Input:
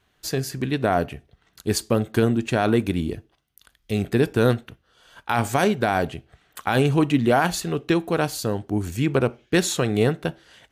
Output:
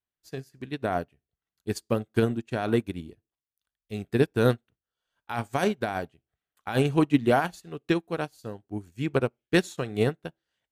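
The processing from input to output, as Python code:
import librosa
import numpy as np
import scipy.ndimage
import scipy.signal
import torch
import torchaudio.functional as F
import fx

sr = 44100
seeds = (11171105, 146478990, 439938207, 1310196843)

y = fx.upward_expand(x, sr, threshold_db=-35.0, expansion=2.5)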